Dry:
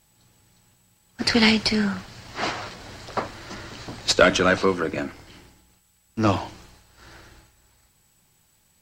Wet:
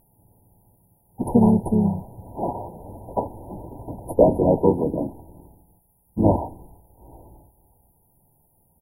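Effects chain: harmoniser -12 st -9 dB, -3 st -4 dB; brick-wall FIR band-stop 1000–9500 Hz; gain +2 dB

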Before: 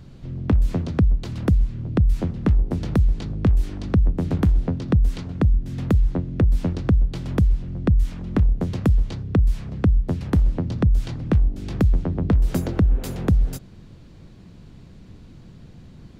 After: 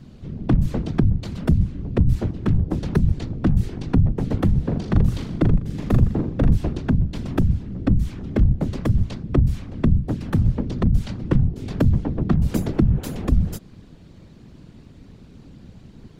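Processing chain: 4.61–6.55 flutter echo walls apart 6.9 m, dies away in 0.52 s; overloaded stage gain 11 dB; whisperiser

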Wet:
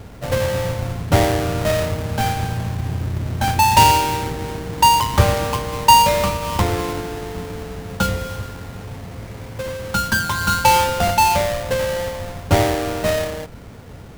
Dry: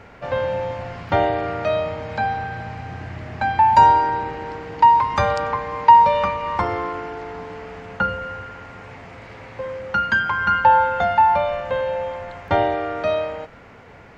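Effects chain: half-waves squared off; low shelf 290 Hz +11 dB; gain -4.5 dB

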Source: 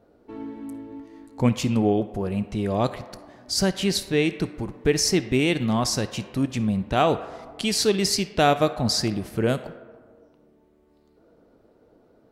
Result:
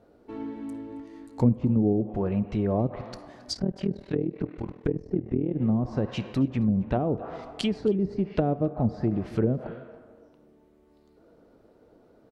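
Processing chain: treble ducked by the level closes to 370 Hz, closed at -18 dBFS; 3.54–5.55 AM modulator 40 Hz, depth 80%; echo 0.271 s -21.5 dB

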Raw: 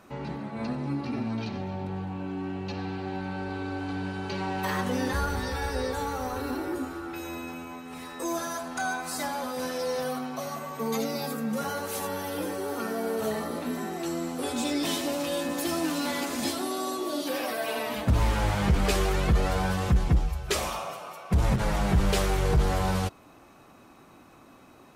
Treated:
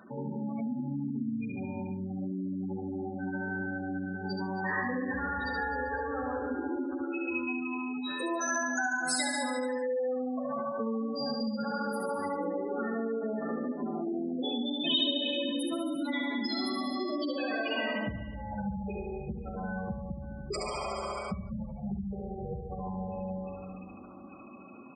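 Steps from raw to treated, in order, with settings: spectral gate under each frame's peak -10 dB strong; high shelf 5800 Hz +10 dB; small resonant body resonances 220/1600/3700 Hz, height 8 dB, ringing for 50 ms; on a send: feedback echo 71 ms, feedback 60%, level -3 dB; on the sum: Schroeder reverb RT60 2.6 s, combs from 33 ms, DRR 3.5 dB; compressor 6:1, threshold -29 dBFS, peak gain reduction 15 dB; weighting filter D; spectral gate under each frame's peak -25 dB strong

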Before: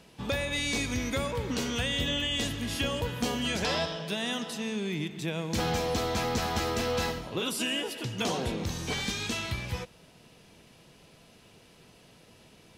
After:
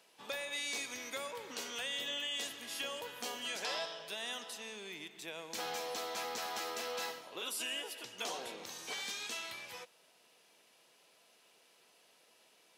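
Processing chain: HPF 530 Hz 12 dB/oct; high shelf 8400 Hz +6 dB; gain -8 dB

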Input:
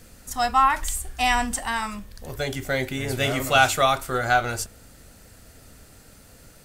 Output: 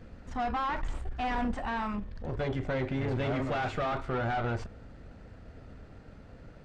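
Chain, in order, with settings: tube stage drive 30 dB, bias 0.55; tape spacing loss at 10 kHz 39 dB; gain +5 dB

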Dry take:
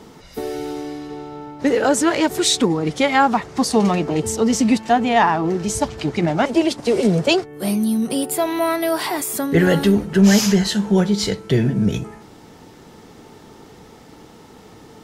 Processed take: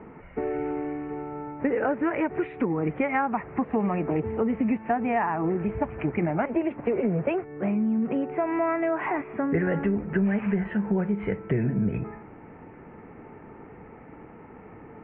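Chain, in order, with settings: compressor 5:1, threshold -20 dBFS, peak gain reduction 11 dB; steep low-pass 2500 Hz 72 dB/oct; gain -2 dB

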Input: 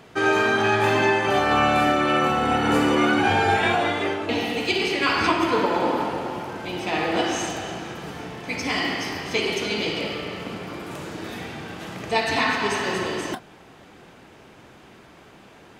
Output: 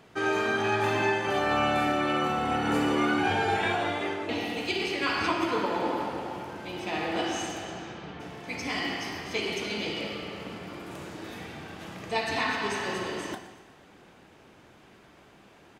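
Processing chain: 7.64–8.19 LPF 9800 Hz -> 3700 Hz 24 dB/oct; feedback echo 0.12 s, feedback 52%, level -16 dB; non-linear reverb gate 0.46 s falling, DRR 10.5 dB; gain -7 dB

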